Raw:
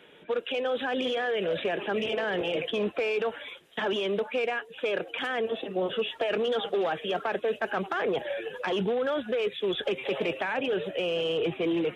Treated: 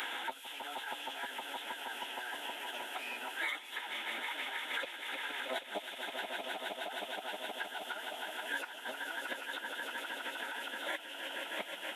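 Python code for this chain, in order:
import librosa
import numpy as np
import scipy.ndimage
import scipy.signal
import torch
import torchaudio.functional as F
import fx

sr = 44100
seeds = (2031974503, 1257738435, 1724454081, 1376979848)

y = scipy.signal.sosfilt(scipy.signal.butter(4, 730.0, 'highpass', fs=sr, output='sos'), x)
y = fx.high_shelf(y, sr, hz=5200.0, db=6.5)
y = fx.notch(y, sr, hz=2000.0, q=7.2)
y = fx.gate_flip(y, sr, shuts_db=-30.0, range_db=-30)
y = fx.dmg_noise_colour(y, sr, seeds[0], colour='violet', level_db=-73.0)
y = fx.echo_swell(y, sr, ms=157, loudest=5, wet_db=-11.5)
y = fx.pitch_keep_formants(y, sr, semitones=-10.0)
y = fx.band_squash(y, sr, depth_pct=100)
y = y * librosa.db_to_amplitude(13.5)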